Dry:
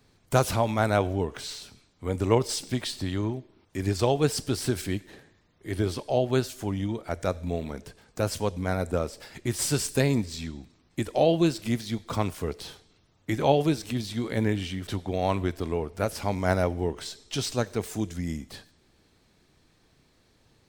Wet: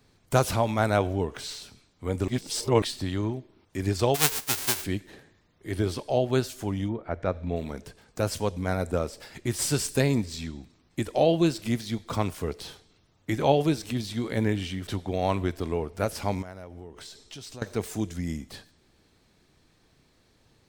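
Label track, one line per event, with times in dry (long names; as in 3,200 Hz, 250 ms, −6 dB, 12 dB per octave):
2.280000	2.820000	reverse
4.140000	4.830000	spectral envelope flattened exponent 0.1
6.880000	7.550000	low-pass filter 1,500 Hz → 3,600 Hz
16.420000	17.620000	downward compressor 4 to 1, threshold −41 dBFS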